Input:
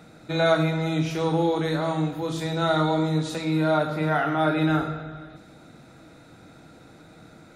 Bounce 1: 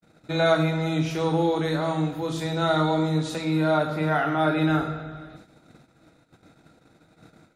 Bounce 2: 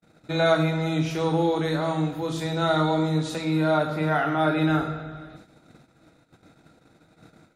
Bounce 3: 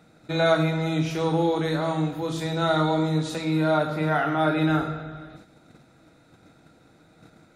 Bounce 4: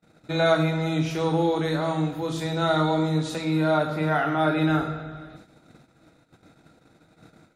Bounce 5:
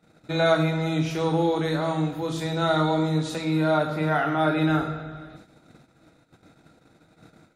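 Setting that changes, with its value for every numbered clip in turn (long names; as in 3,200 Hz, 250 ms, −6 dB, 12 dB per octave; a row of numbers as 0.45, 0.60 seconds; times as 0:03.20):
noise gate, range: −57, −44, −7, −32, −19 decibels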